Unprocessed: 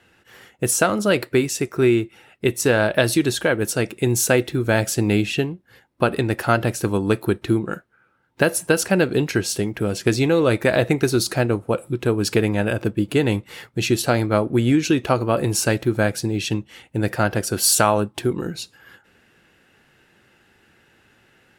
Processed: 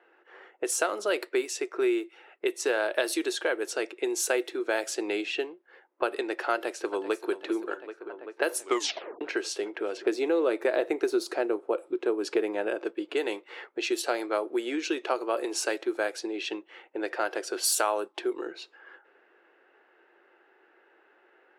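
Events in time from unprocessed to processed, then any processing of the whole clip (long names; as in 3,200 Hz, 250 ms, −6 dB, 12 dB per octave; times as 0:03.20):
0:06.53–0:07.31: delay throw 390 ms, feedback 80%, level −15 dB
0:08.60: tape stop 0.61 s
0:09.97–0:12.84: spectral tilt −2.5 dB per octave
whole clip: elliptic high-pass filter 350 Hz, stop band 80 dB; low-pass that shuts in the quiet parts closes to 1,500 Hz, open at −16.5 dBFS; downward compressor 1.5 to 1, threshold −37 dBFS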